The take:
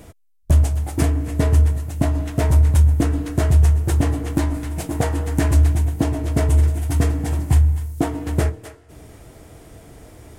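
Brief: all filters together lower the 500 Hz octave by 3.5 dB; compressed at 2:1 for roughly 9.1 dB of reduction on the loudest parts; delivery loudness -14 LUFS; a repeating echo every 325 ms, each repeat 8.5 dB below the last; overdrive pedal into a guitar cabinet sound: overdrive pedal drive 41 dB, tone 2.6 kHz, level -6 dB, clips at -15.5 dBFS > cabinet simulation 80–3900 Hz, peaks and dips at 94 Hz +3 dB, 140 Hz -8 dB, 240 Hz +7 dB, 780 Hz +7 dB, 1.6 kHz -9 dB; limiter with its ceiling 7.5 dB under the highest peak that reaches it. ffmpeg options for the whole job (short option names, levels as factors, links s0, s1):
-filter_complex "[0:a]equalizer=f=500:t=o:g=-7,acompressor=threshold=0.0447:ratio=2,alimiter=limit=0.112:level=0:latency=1,aecho=1:1:325|650|975|1300:0.376|0.143|0.0543|0.0206,asplit=2[s0][s1];[s1]highpass=f=720:p=1,volume=112,asoftclip=type=tanh:threshold=0.168[s2];[s0][s2]amix=inputs=2:normalize=0,lowpass=f=2600:p=1,volume=0.501,highpass=80,equalizer=f=94:t=q:w=4:g=3,equalizer=f=140:t=q:w=4:g=-8,equalizer=f=240:t=q:w=4:g=7,equalizer=f=780:t=q:w=4:g=7,equalizer=f=1600:t=q:w=4:g=-9,lowpass=f=3900:w=0.5412,lowpass=f=3900:w=1.3066,volume=2.99"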